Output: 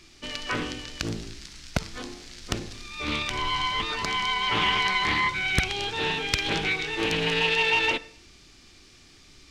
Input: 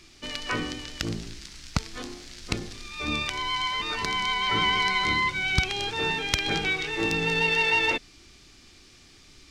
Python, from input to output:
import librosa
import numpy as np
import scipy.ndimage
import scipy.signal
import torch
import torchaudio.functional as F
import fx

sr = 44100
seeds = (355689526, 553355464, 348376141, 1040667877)

y = fx.low_shelf(x, sr, hz=470.0, db=8.0, at=(3.3, 3.85))
y = fx.rev_schroeder(y, sr, rt60_s=0.54, comb_ms=38, drr_db=15.5)
y = fx.doppler_dist(y, sr, depth_ms=0.99)